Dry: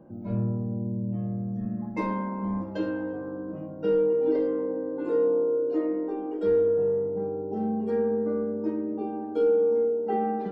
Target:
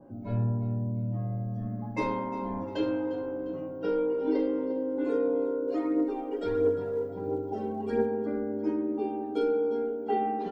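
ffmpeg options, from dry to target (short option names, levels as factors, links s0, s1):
-filter_complex "[0:a]equalizer=f=150:t=o:w=0.24:g=-12.5,aecho=1:1:7.3:0.78,asplit=3[s0][s1][s2];[s0]afade=t=out:st=5.67:d=0.02[s3];[s1]aphaser=in_gain=1:out_gain=1:delay=2.2:decay=0.46:speed=1.5:type=triangular,afade=t=in:st=5.67:d=0.02,afade=t=out:st=8.06:d=0.02[s4];[s2]afade=t=in:st=8.06:d=0.02[s5];[s3][s4][s5]amix=inputs=3:normalize=0,aecho=1:1:352|704|1056|1408:0.168|0.0672|0.0269|0.0107,adynamicequalizer=threshold=0.00398:dfrequency=1900:dqfactor=0.7:tfrequency=1900:tqfactor=0.7:attack=5:release=100:ratio=0.375:range=2:mode=boostabove:tftype=highshelf,volume=0.891"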